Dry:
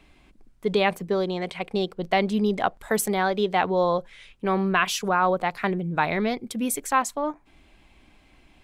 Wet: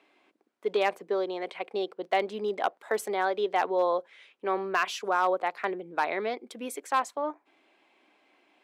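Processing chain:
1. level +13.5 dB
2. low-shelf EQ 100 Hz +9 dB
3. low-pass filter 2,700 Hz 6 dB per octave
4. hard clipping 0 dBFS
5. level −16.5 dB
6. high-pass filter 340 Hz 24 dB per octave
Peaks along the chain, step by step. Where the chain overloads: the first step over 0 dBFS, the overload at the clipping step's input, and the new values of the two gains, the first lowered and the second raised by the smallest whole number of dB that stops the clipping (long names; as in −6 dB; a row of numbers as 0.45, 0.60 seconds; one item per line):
+5.5, +5.5, +4.5, 0.0, −16.5, −12.5 dBFS
step 1, 4.5 dB
step 1 +8.5 dB, step 5 −11.5 dB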